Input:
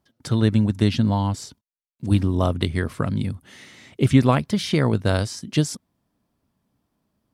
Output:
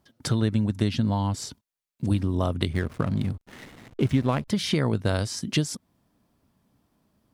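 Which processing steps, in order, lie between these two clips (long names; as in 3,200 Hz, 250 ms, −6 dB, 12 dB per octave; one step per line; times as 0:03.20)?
downward compressor 2.5 to 1, threshold −29 dBFS, peak gain reduction 13 dB
0:02.73–0:04.48: slack as between gear wheels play −38 dBFS
level +4.5 dB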